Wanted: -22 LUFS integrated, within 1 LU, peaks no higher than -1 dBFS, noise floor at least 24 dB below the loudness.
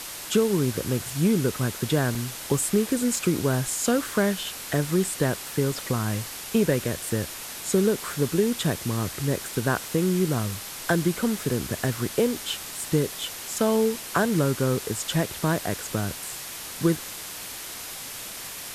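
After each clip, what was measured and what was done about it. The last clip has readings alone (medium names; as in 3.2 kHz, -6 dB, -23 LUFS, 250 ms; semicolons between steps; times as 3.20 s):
dropouts 5; longest dropout 1.5 ms; noise floor -37 dBFS; noise floor target -50 dBFS; loudness -26.0 LUFS; peak level -10.0 dBFS; loudness target -22.0 LUFS
-> interpolate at 1.10/2.15/3.16/5.72/11.51 s, 1.5 ms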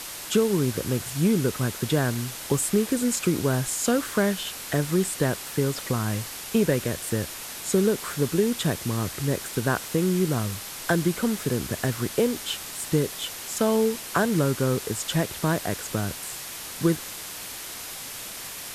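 dropouts 0; noise floor -37 dBFS; noise floor target -50 dBFS
-> noise reduction 13 dB, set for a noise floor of -37 dBFS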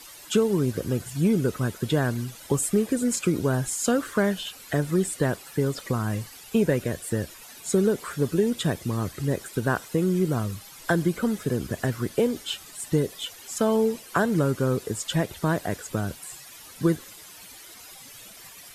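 noise floor -46 dBFS; noise floor target -50 dBFS
-> noise reduction 6 dB, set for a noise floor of -46 dBFS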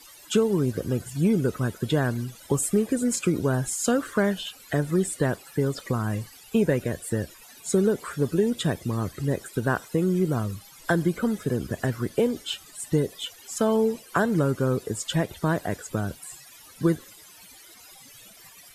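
noise floor -50 dBFS; loudness -26.0 LUFS; peak level -10.0 dBFS; loudness target -22.0 LUFS
-> trim +4 dB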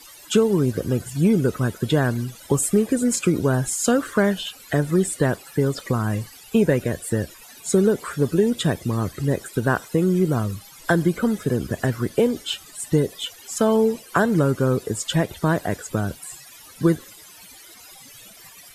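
loudness -22.0 LUFS; peak level -6.0 dBFS; noise floor -46 dBFS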